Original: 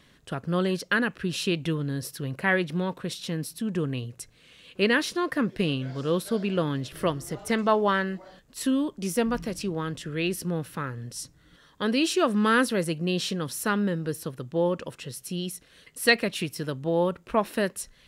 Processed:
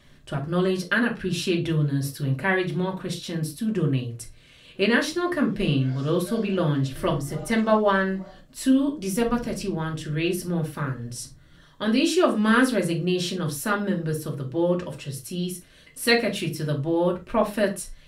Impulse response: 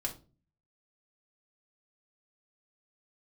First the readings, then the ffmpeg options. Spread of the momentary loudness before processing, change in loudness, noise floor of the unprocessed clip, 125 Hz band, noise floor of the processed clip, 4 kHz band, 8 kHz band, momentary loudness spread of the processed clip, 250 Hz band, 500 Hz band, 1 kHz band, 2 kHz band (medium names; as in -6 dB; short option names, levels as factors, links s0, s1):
12 LU, +2.5 dB, -58 dBFS, +5.0 dB, -52 dBFS, +1.0 dB, +1.0 dB, 11 LU, +3.5 dB, +2.5 dB, +1.0 dB, +1.0 dB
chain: -filter_complex "[0:a]lowshelf=f=110:g=5[s0];[1:a]atrim=start_sample=2205,afade=t=out:st=0.18:d=0.01,atrim=end_sample=8379[s1];[s0][s1]afir=irnorm=-1:irlink=0"